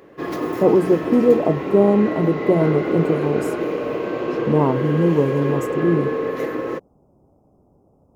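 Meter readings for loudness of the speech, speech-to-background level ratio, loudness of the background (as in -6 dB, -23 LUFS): -19.0 LUFS, 5.5 dB, -24.5 LUFS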